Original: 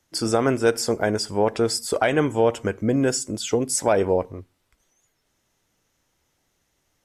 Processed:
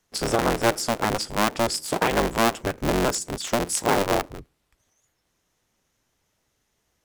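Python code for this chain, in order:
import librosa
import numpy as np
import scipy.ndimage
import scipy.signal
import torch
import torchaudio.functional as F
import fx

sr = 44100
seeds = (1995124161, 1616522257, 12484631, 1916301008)

y = fx.cycle_switch(x, sr, every=3, mode='inverted')
y = y * librosa.db_to_amplitude(-2.0)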